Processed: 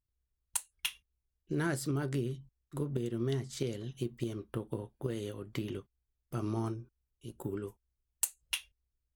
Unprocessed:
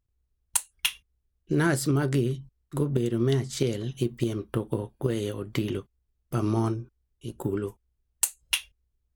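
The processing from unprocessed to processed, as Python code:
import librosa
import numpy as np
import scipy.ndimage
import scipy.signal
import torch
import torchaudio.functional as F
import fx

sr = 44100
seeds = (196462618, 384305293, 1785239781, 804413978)

y = fx.high_shelf(x, sr, hz=11000.0, db=5.5, at=(6.66, 8.25))
y = y * 10.0 ** (-9.0 / 20.0)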